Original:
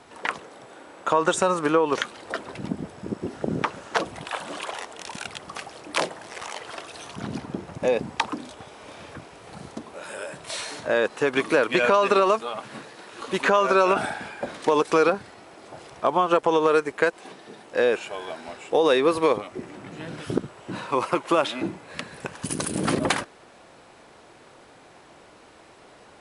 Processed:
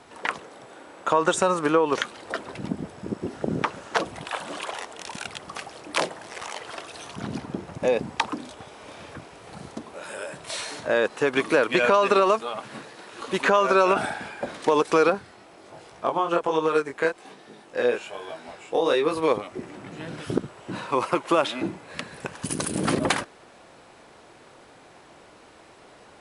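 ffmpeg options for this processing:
-filter_complex "[0:a]asplit=3[a][b][c];[a]afade=t=out:st=15.19:d=0.02[d];[b]flanger=delay=18.5:depth=6.1:speed=1.2,afade=t=in:st=15.19:d=0.02,afade=t=out:st=19.27:d=0.02[e];[c]afade=t=in:st=19.27:d=0.02[f];[d][e][f]amix=inputs=3:normalize=0"

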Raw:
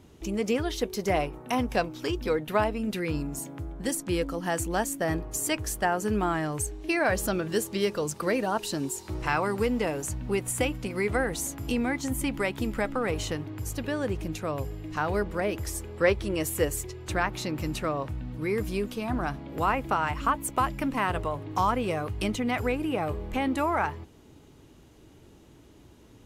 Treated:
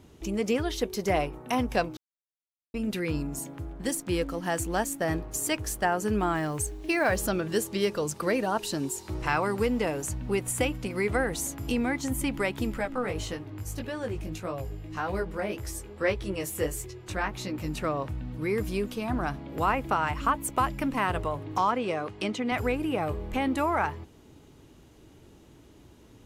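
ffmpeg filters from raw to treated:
-filter_complex "[0:a]asettb=1/sr,asplit=3[a][b][c];[a]atrim=end=3.534[d];[b]atrim=start=3.53:end=5.84,asetpts=PTS-STARTPTS,afade=t=in:d=0.004:c=qsin,afade=t=out:st=2.306:d=0.004:c=qsin,aeval=exprs='sgn(val(0))*max(abs(val(0))-0.00251,0)':c=same[e];[c]atrim=start=5.836[f];[d][e]acrossfade=d=0.004:c1=hsin:c2=qsin[g];[g][f]acrossfade=d=0.004:c1=qsin:c2=hsin,asettb=1/sr,asplit=3[h][i][j];[h]atrim=end=6.354[k];[i]atrim=start=6.35:end=7.28,asetpts=PTS-STARTPTS,afade=t=in:d=0.004:c=qsin,afade=t=out:st=0.926:d=0.004:c=qsin,acrusher=bits=8:mode=log:mix=0:aa=0.000001[l];[j]atrim=start=7.276[m];[k][l]acrossfade=d=0.004:c1=hsin:c2=qsin[n];[n][m]acrossfade=d=0.004:c1=qsin:c2=hsin,asettb=1/sr,asplit=3[o][p][q];[o]atrim=end=12.784[r];[p]atrim=start=12.78:end=17.78,asetpts=PTS-STARTPTS,afade=t=in:d=0.004:c=qsin,afade=t=out:st=4.996:d=0.004:c=qsin,flanger=delay=15.5:depth=5.2:speed=1.7[s];[q]atrim=start=17.776[t];[r][s]acrossfade=d=0.004:c1=hsin:c2=qsin[u];[u][t]acrossfade=d=0.004:c1=qsin:c2=hsin,asettb=1/sr,asplit=3[v][w][x];[v]atrim=end=21.584[y];[w]atrim=start=21.58:end=22.52,asetpts=PTS-STARTPTS,afade=t=in:d=0.004:c=qsin,afade=t=out:st=0.936:d=0.004:c=qsin,highpass=200,lowpass=6.4k[z];[x]atrim=start=22.516[aa];[y][z]acrossfade=d=0.004:c1=hsin:c2=qsin[ab];[ab][aa]acrossfade=d=0.004:c1=qsin:c2=hsin,asplit=3[ac][ad][ae];[ac]atrim=end=1.97,asetpts=PTS-STARTPTS,afade=t=out:st=1.966:d=0.004:c=hsin[af];[ad]atrim=start=1.97:end=2.74,asetpts=PTS-STARTPTS,volume=0[ag];[ae]atrim=start=2.74,asetpts=PTS-STARTPTS,afade=t=in:d=0.004:c=hsin[ah];[af][ag][ah]concat=n=3:v=0:a=1"

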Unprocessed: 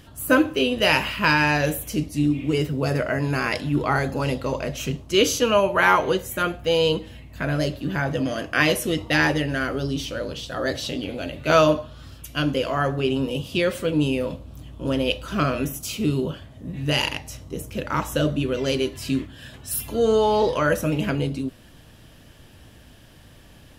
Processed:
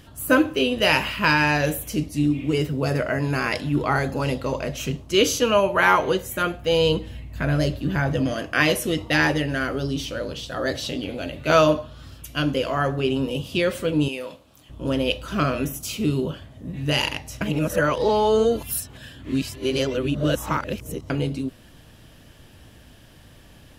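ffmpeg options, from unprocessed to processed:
-filter_complex "[0:a]asettb=1/sr,asplit=3[a][b][c];[a]atrim=end=6.724[d];[b]atrim=start=6.72:end=8.34,asetpts=PTS-STARTPTS,afade=t=in:d=0.004:c=qsin,afade=t=out:st=1.616:d=0.004:c=qsin,lowshelf=f=110:g=9.5[e];[c]atrim=start=8.336[f];[d][e]acrossfade=d=0.004:c1=hsin:c2=qsin[g];[g][f]acrossfade=d=0.004:c1=qsin:c2=hsin,asettb=1/sr,asplit=3[h][i][j];[h]atrim=end=14.084[k];[i]atrim=start=14.08:end=14.7,asetpts=PTS-STARTPTS,afade=t=in:d=0.004:c=qsin,afade=t=out:st=0.616:d=0.004:c=qsin,highpass=f=960:p=1[l];[j]atrim=start=14.696[m];[k][l]acrossfade=d=0.004:c1=hsin:c2=qsin[n];[n][m]acrossfade=d=0.004:c1=qsin:c2=hsin,asplit=3[o][p][q];[o]atrim=end=17.412[r];[p]atrim=start=17.408:end=21.102,asetpts=PTS-STARTPTS,areverse[s];[q]atrim=start=21.098[t];[r][s]acrossfade=d=0.004:c1=hsin:c2=hsin[u];[u][t]acrossfade=d=0.004:c1=hsin:c2=hsin"

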